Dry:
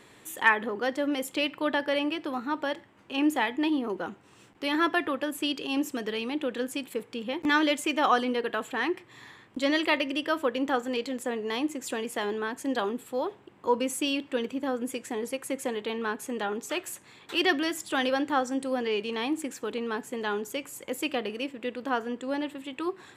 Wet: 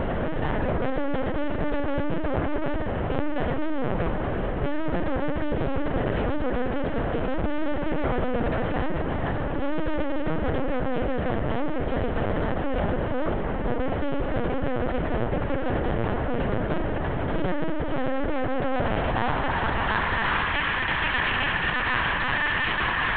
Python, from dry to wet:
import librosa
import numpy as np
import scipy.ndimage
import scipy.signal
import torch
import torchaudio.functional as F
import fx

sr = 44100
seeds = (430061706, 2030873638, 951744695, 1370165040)

y = fx.bin_compress(x, sr, power=0.2)
y = fx.filter_sweep_bandpass(y, sr, from_hz=350.0, to_hz=1800.0, start_s=18.15, end_s=20.57, q=0.96)
y = fx.echo_thinned(y, sr, ms=118, feedback_pct=24, hz=870.0, wet_db=-13.5)
y = 10.0 ** (-19.0 / 20.0) * np.tanh(y / 10.0 ** (-19.0 / 20.0))
y = fx.lpc_vocoder(y, sr, seeds[0], excitation='pitch_kept', order=8)